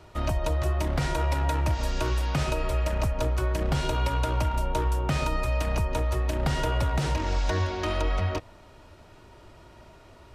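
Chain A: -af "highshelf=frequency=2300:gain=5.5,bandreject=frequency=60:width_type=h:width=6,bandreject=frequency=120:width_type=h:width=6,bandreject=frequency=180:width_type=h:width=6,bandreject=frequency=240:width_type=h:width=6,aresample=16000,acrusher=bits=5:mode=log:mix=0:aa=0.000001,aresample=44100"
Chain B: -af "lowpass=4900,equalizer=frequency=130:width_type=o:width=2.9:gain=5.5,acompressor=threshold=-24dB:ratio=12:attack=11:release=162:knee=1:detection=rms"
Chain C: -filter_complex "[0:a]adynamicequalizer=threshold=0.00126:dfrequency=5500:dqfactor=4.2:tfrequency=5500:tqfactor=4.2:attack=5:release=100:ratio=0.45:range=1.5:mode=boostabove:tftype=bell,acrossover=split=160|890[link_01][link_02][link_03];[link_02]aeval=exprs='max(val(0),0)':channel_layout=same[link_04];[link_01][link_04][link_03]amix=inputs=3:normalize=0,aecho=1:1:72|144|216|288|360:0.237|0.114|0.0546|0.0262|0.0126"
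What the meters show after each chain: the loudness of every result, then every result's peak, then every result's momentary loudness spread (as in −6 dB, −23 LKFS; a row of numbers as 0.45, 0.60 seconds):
−28.0, −30.0, −28.5 LKFS; −12.0, −16.0, −12.0 dBFS; 3, 20, 3 LU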